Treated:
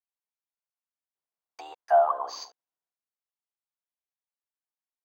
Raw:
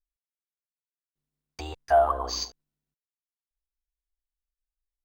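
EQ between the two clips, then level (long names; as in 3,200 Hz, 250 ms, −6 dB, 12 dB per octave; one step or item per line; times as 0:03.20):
high-pass with resonance 800 Hz, resonance Q 1.6
tilt shelving filter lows +5 dB, about 1,400 Hz
−5.0 dB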